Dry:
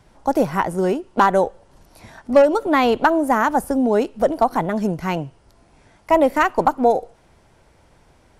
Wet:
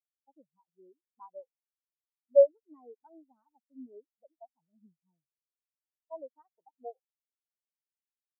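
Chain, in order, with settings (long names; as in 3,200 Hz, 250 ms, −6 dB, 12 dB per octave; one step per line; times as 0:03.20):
every bin expanded away from the loudest bin 4 to 1
level −6 dB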